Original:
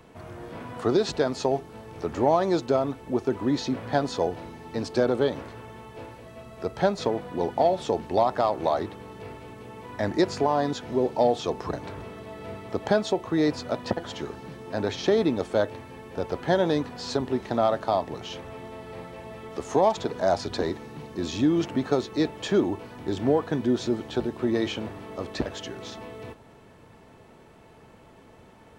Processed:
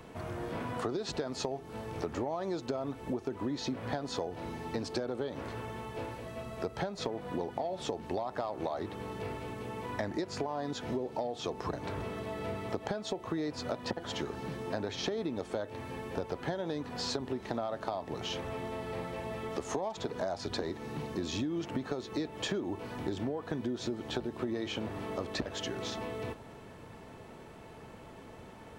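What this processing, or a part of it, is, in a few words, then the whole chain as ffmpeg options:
serial compression, leveller first: -af "acompressor=threshold=-23dB:ratio=3,acompressor=threshold=-34dB:ratio=6,volume=2dB"

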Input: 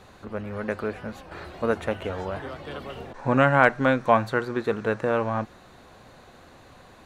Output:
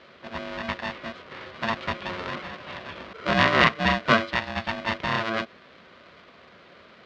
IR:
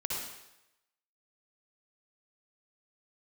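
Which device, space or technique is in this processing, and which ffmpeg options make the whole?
ring modulator pedal into a guitar cabinet: -af "aeval=exprs='val(0)*sgn(sin(2*PI*450*n/s))':c=same,highpass=110,equalizer=f=120:t=q:w=4:g=-8,equalizer=f=300:t=q:w=4:g=-8,equalizer=f=850:t=q:w=4:g=-10,lowpass=f=4.2k:w=0.5412,lowpass=f=4.2k:w=1.3066,volume=1.5dB"

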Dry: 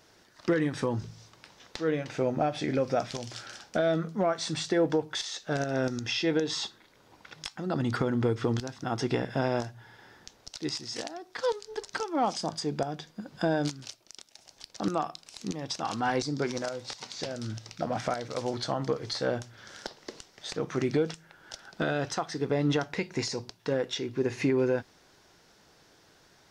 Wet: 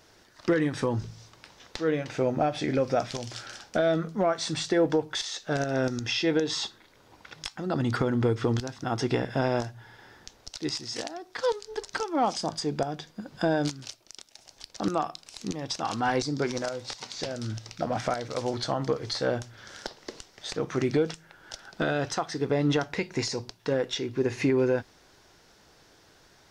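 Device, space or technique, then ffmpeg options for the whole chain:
low shelf boost with a cut just above: -af "lowshelf=f=70:g=6.5,equalizer=f=170:t=o:w=0.77:g=-2.5,volume=2dB"

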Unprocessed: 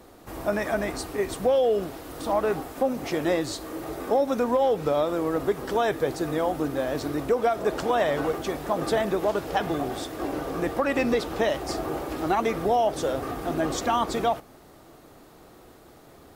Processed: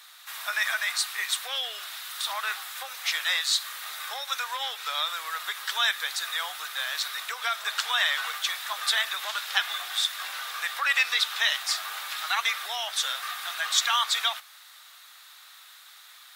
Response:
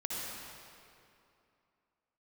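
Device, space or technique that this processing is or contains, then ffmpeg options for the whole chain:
headphones lying on a table: -af "highpass=f=1.4k:w=0.5412,highpass=f=1.4k:w=1.3066,equalizer=f=3.7k:t=o:w=0.35:g=9,volume=8dB"

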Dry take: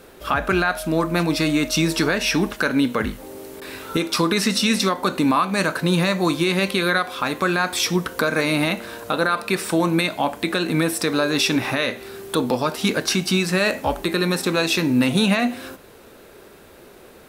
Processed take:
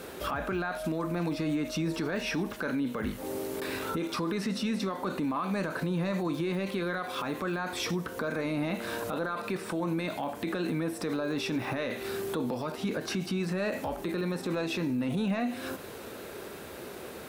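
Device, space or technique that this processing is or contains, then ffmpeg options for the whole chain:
podcast mastering chain: -af "highpass=68,deesser=0.95,acompressor=threshold=-34dB:ratio=2.5,alimiter=level_in=2.5dB:limit=-24dB:level=0:latency=1:release=28,volume=-2.5dB,volume=4dB" -ar 48000 -c:a libmp3lame -b:a 112k

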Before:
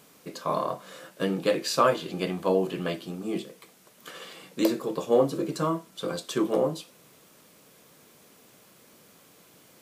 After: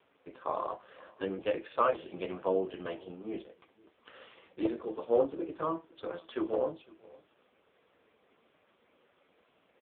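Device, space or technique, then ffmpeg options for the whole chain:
satellite phone: -filter_complex "[0:a]asplit=3[a][b][c];[a]afade=t=out:st=0.66:d=0.02[d];[b]highpass=f=54:p=1,afade=t=in:st=0.66:d=0.02,afade=t=out:st=1.59:d=0.02[e];[c]afade=t=in:st=1.59:d=0.02[f];[d][e][f]amix=inputs=3:normalize=0,highpass=300,lowpass=3.3k,aecho=1:1:507:0.0668,volume=-4dB" -ar 8000 -c:a libopencore_amrnb -b:a 5150

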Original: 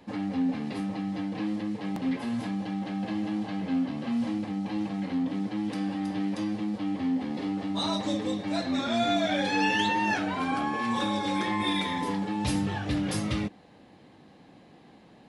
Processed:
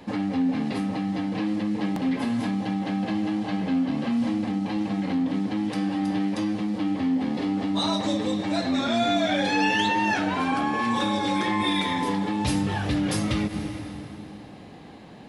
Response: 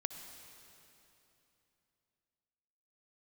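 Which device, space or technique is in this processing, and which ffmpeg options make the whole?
ducked reverb: -filter_complex "[0:a]asplit=3[a][b][c];[1:a]atrim=start_sample=2205[d];[b][d]afir=irnorm=-1:irlink=0[e];[c]apad=whole_len=674267[f];[e][f]sidechaincompress=threshold=-36dB:ratio=8:attack=16:release=117,volume=5.5dB[g];[a][g]amix=inputs=2:normalize=0"

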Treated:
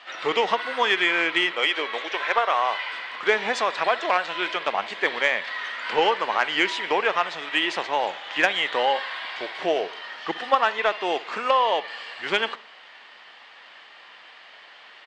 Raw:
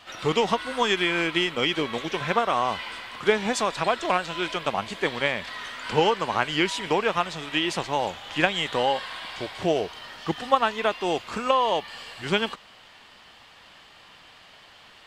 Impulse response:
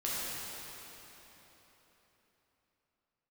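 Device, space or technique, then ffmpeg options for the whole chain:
intercom: -filter_complex "[0:a]asettb=1/sr,asplit=3[a][b][c];[a]atrim=end=1.514[d];[b]atrim=start=1.51:end=2.93,asetpts=PTS-STARTPTS,afade=t=in:d=0.004:c=qsin,afade=t=out:st=1.416:d=0.004:c=qsin,highpass=400[e];[c]atrim=start=2.926[f];[d][e]acrossfade=d=0.004:c1=hsin:c2=qsin[g];[g][f]acrossfade=d=0.004:c1=qsin:c2=hsin,highpass=430,lowpass=4.3k,equalizer=f=1.9k:t=o:w=0.52:g=5,asplit=2[h][i];[i]adelay=62,lowpass=f=2k:p=1,volume=-18.5dB,asplit=2[j][k];[k]adelay=62,lowpass=f=2k:p=1,volume=0.49,asplit=2[l][m];[m]adelay=62,lowpass=f=2k:p=1,volume=0.49,asplit=2[n][o];[o]adelay=62,lowpass=f=2k:p=1,volume=0.49[p];[h][j][l][n][p]amix=inputs=5:normalize=0,asoftclip=type=tanh:threshold=-10dB,volume=2.5dB"

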